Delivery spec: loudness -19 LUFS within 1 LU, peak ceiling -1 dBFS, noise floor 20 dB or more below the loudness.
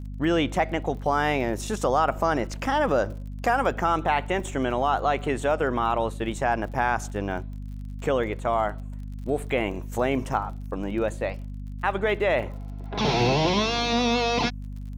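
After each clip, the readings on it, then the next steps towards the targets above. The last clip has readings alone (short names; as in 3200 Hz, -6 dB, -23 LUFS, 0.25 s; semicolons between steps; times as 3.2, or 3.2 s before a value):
ticks 39/s; hum 50 Hz; harmonics up to 250 Hz; hum level -32 dBFS; loudness -25.5 LUFS; peak -10.0 dBFS; loudness target -19.0 LUFS
-> de-click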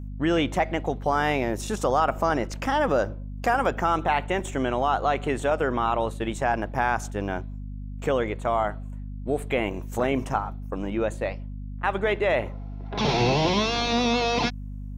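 ticks 0/s; hum 50 Hz; harmonics up to 250 Hz; hum level -33 dBFS
-> de-hum 50 Hz, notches 5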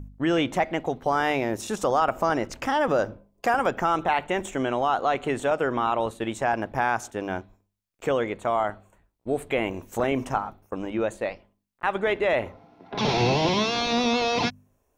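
hum none; loudness -26.0 LUFS; peak -10.0 dBFS; loudness target -19.0 LUFS
-> gain +7 dB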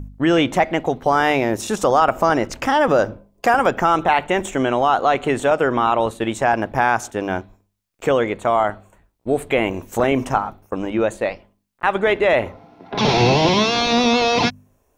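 loudness -19.0 LUFS; peak -3.0 dBFS; noise floor -65 dBFS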